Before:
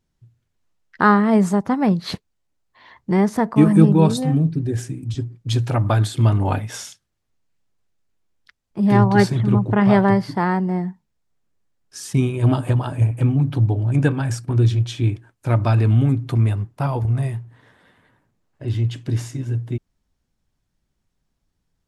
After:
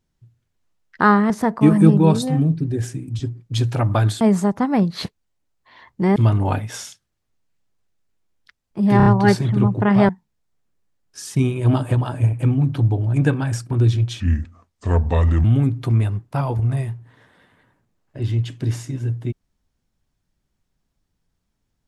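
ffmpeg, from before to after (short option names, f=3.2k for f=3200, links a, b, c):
-filter_complex "[0:a]asplit=10[a][b][c][d][e][f][g][h][i][j];[a]atrim=end=1.302[k];[b]atrim=start=3.248:end=6.162[l];[c]atrim=start=1.298:end=3.252[m];[d]atrim=start=6.158:end=9.002[n];[e]atrim=start=8.968:end=9.002[o];[f]atrim=start=8.968:end=9.002[p];[g]atrim=start=8.968:end=10.002[q];[h]atrim=start=10.868:end=14.984[r];[i]atrim=start=14.98:end=15.9,asetpts=PTS-STARTPTS,asetrate=32634,aresample=44100,atrim=end_sample=54827,asetpts=PTS-STARTPTS[s];[j]atrim=start=15.896[t];[k][l]acrossfade=d=0.004:c1=hsin:c2=hsin[u];[u][m]acrossfade=d=0.004:c1=hsin:c2=hsin[v];[v][n]acrossfade=d=0.004:c1=hsin:c2=hsin[w];[w][o]acrossfade=d=0.004:c1=hsin:c2=hsin[x];[x][p]acrossfade=d=0.004:c1=hsin:c2=hsin[y];[y][q]acrossfade=d=0.004:c1=hsin:c2=hsin[z];[z][r]acrossfade=d=0.004:c1=hsin:c2=hsin[aa];[aa][s]acrossfade=d=0.004:c1=hsin:c2=hsin[ab];[ab][t]acrossfade=d=0.004:c1=hsin:c2=hsin"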